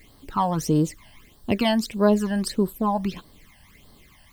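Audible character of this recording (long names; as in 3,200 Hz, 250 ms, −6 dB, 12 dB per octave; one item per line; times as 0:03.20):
a quantiser's noise floor 10 bits, dither triangular
phaser sweep stages 12, 1.6 Hz, lowest notch 380–2,400 Hz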